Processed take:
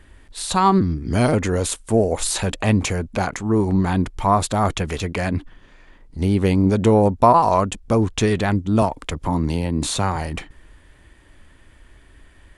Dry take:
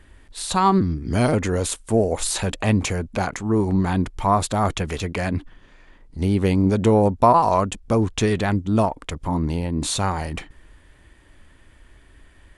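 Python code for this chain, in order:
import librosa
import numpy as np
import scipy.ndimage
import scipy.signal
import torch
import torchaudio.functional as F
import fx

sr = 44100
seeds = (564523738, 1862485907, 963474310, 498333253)

y = fx.band_squash(x, sr, depth_pct=40, at=(8.82, 10.16))
y = y * librosa.db_to_amplitude(1.5)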